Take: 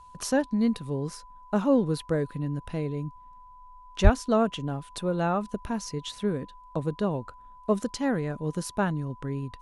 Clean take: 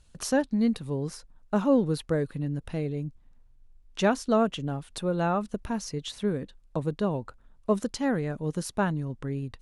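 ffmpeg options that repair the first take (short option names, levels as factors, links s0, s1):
-filter_complex "[0:a]bandreject=f=1000:w=30,asplit=3[s0][s1][s2];[s0]afade=t=out:st=4.03:d=0.02[s3];[s1]highpass=f=140:w=0.5412,highpass=f=140:w=1.3066,afade=t=in:st=4.03:d=0.02,afade=t=out:st=4.15:d=0.02[s4];[s2]afade=t=in:st=4.15:d=0.02[s5];[s3][s4][s5]amix=inputs=3:normalize=0"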